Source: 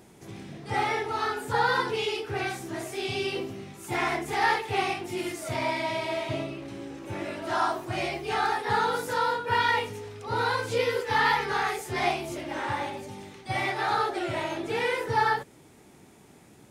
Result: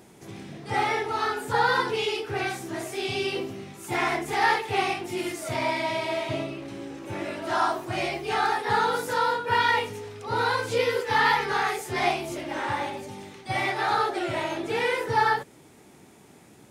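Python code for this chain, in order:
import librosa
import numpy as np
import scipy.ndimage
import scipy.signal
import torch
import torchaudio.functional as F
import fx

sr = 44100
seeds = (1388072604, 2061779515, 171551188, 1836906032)

y = fx.low_shelf(x, sr, hz=70.0, db=-7.5)
y = F.gain(torch.from_numpy(y), 2.0).numpy()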